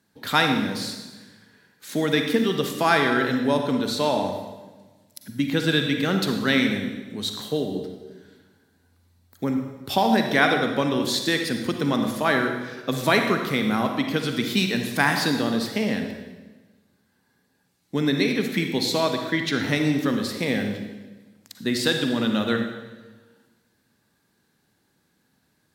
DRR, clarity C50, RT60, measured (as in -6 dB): 4.0 dB, 4.5 dB, 1.3 s